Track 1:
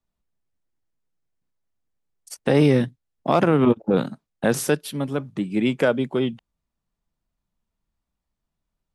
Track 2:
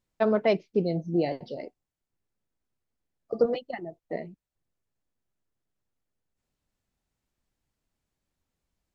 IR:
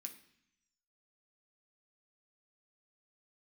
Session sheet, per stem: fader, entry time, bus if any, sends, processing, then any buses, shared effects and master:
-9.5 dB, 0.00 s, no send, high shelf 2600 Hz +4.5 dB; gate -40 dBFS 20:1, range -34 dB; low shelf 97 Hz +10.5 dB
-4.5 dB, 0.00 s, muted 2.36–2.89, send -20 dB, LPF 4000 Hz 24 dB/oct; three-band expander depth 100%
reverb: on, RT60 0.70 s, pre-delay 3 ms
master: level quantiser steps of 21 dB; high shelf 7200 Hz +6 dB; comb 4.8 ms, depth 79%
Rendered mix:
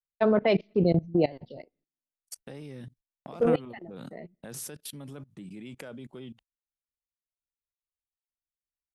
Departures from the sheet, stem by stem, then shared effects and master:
stem 2 -4.5 dB -> +6.5 dB; master: missing comb 4.8 ms, depth 79%

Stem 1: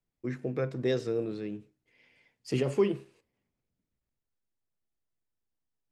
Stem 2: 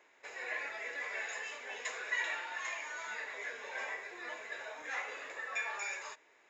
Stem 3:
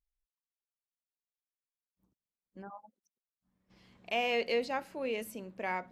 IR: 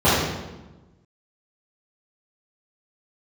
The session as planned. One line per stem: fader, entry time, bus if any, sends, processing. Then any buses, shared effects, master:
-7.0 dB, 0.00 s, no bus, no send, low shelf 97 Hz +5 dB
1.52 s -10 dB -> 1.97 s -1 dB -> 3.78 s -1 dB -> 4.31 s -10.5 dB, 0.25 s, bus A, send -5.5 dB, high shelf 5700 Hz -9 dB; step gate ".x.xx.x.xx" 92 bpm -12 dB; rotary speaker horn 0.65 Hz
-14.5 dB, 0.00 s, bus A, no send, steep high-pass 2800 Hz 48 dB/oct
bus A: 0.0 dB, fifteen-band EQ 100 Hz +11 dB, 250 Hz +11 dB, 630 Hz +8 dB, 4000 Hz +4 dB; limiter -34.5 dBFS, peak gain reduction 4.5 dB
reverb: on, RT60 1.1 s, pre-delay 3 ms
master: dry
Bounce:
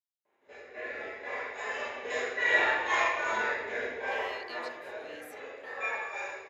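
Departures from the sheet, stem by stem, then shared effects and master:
stem 1: muted; stem 3 -14.5 dB -> -7.0 dB

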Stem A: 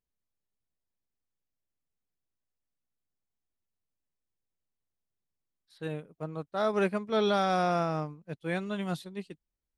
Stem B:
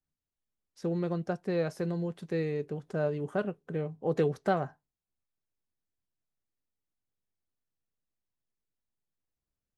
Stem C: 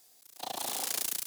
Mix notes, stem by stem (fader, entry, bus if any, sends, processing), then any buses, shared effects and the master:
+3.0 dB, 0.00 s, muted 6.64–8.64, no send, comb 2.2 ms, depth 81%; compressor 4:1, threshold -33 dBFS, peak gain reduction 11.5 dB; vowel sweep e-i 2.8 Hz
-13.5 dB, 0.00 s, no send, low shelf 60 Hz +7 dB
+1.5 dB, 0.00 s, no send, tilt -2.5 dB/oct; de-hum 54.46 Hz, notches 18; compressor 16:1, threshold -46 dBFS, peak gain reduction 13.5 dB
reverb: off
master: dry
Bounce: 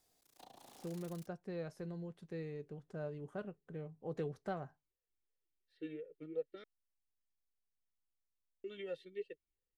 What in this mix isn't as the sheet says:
stem C +1.5 dB -> -9.0 dB; master: extra low shelf 67 Hz +7.5 dB

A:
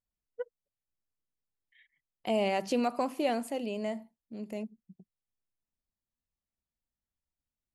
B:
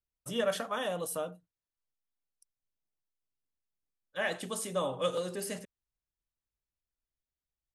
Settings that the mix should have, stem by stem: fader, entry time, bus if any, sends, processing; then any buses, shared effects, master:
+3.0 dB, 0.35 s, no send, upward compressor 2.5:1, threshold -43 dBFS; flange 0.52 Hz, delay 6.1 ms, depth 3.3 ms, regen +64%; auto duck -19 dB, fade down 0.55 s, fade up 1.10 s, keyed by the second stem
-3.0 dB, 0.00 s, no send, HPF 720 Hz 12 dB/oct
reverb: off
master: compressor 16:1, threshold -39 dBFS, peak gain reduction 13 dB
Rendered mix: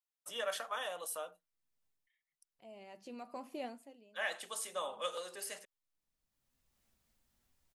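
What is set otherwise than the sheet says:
stem A +3.0 dB -> -7.5 dB; master: missing compressor 16:1, threshold -39 dBFS, peak gain reduction 13 dB

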